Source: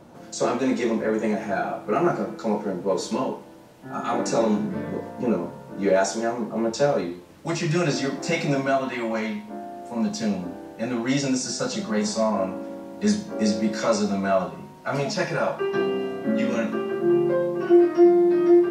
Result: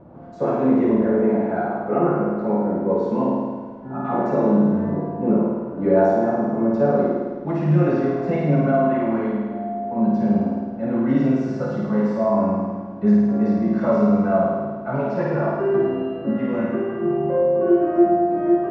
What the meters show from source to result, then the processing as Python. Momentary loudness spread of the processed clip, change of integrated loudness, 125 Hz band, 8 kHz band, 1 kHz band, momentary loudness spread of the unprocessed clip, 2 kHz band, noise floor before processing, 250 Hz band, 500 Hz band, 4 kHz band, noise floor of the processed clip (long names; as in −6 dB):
8 LU, +3.5 dB, +7.0 dB, below −25 dB, +3.5 dB, 12 LU, −4.0 dB, −44 dBFS, +4.0 dB, +3.0 dB, below −15 dB, −32 dBFS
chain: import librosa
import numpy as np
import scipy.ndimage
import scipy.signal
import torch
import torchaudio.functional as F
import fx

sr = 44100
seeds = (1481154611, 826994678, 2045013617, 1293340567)

y = scipy.signal.sosfilt(scipy.signal.butter(2, 1100.0, 'lowpass', fs=sr, output='sos'), x)
y = fx.low_shelf(y, sr, hz=210.0, db=5.0)
y = fx.room_flutter(y, sr, wall_m=9.1, rt60_s=1.5)